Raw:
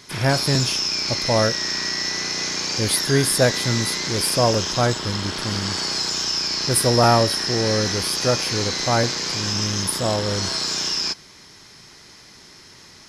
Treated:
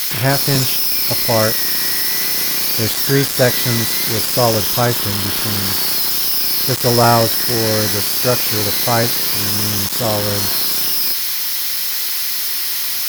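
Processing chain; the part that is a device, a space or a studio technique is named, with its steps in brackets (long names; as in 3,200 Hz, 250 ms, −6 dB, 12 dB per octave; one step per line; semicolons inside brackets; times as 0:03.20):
budget class-D amplifier (gap after every zero crossing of 0.058 ms; spike at every zero crossing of −11.5 dBFS)
level +3.5 dB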